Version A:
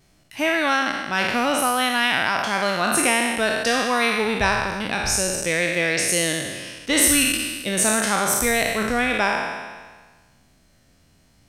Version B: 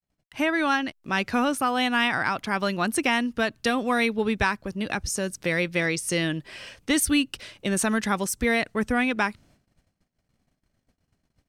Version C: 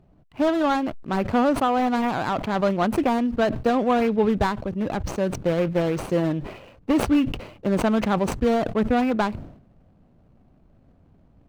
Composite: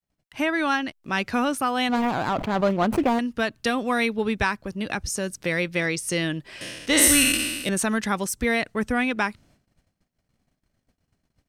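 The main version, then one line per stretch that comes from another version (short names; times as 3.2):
B
1.89–3.19 from C
6.61–7.69 from A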